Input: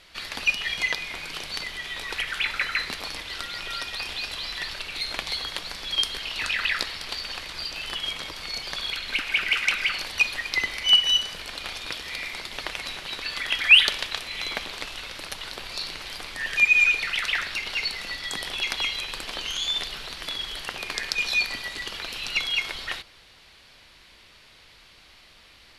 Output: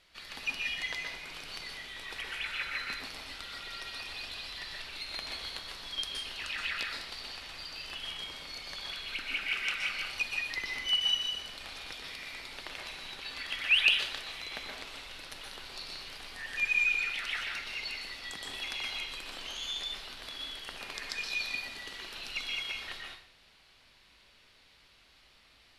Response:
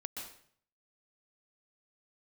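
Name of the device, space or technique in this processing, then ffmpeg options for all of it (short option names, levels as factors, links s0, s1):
bathroom: -filter_complex "[1:a]atrim=start_sample=2205[s0];[0:a][s0]afir=irnorm=-1:irlink=0,volume=0.398"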